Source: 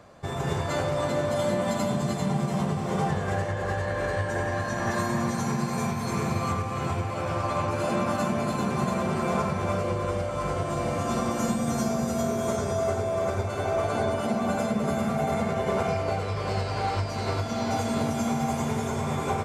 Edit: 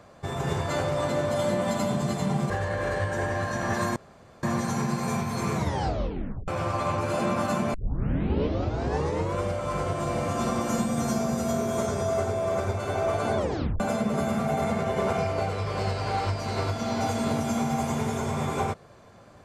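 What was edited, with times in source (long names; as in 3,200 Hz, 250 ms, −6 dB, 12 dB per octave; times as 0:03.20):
0:02.50–0:03.67: remove
0:05.13: splice in room tone 0.47 s
0:06.24: tape stop 0.94 s
0:08.44: tape start 1.63 s
0:14.07: tape stop 0.43 s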